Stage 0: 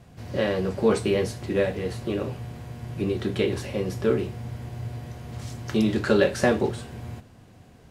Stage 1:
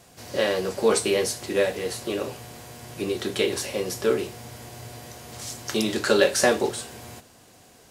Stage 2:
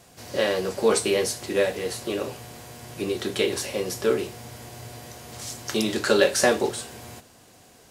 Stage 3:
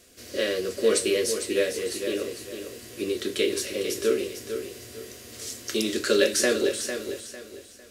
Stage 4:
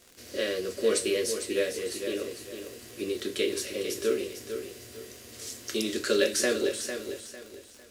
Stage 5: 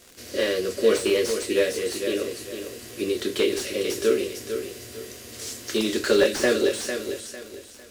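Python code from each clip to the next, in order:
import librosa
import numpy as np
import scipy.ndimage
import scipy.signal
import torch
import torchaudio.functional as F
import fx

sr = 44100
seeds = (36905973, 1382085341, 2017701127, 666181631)

y1 = fx.bass_treble(x, sr, bass_db=-13, treble_db=11)
y1 = F.gain(torch.from_numpy(y1), 2.5).numpy()
y2 = y1
y3 = fx.fixed_phaser(y2, sr, hz=350.0, stages=4)
y3 = fx.echo_feedback(y3, sr, ms=451, feedback_pct=31, wet_db=-8.5)
y4 = fx.dmg_crackle(y3, sr, seeds[0], per_s=110.0, level_db=-35.0)
y4 = F.gain(torch.from_numpy(y4), -3.5).numpy()
y5 = fx.slew_limit(y4, sr, full_power_hz=99.0)
y5 = F.gain(torch.from_numpy(y5), 6.0).numpy()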